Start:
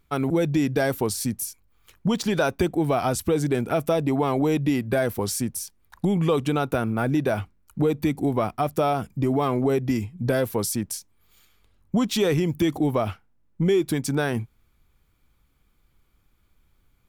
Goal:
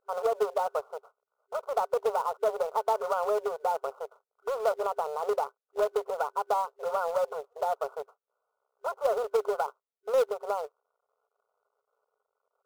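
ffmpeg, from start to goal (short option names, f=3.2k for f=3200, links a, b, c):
-filter_complex "[0:a]aeval=exprs='val(0)+0.5*0.0119*sgn(val(0))':c=same,aeval=exprs='0.282*(cos(1*acos(clip(val(0)/0.282,-1,1)))-cos(1*PI/2))+0.0398*(cos(4*acos(clip(val(0)/0.282,-1,1)))-cos(4*PI/2))+0.0447*(cos(6*acos(clip(val(0)/0.282,-1,1)))-cos(6*PI/2))+0.0355*(cos(7*acos(clip(val(0)/0.282,-1,1)))-cos(7*PI/2))':c=same,afftfilt=real='re*between(b*sr/4096,300,1100)':imag='im*between(b*sr/4096,300,1100)':win_size=4096:overlap=0.75,asplit=2[a][b];[b]acrusher=bits=2:mode=log:mix=0:aa=0.000001,volume=-6dB[c];[a][c]amix=inputs=2:normalize=0,asetrate=59535,aresample=44100,volume=-7.5dB"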